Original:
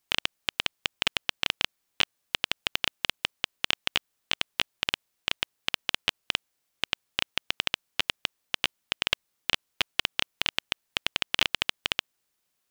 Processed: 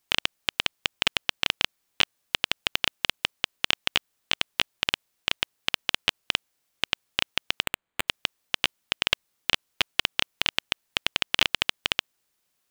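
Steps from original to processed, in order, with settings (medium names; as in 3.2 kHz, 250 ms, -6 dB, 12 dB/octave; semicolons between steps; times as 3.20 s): 7.63–8.08 s: careless resampling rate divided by 8×, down filtered, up hold; trim +2.5 dB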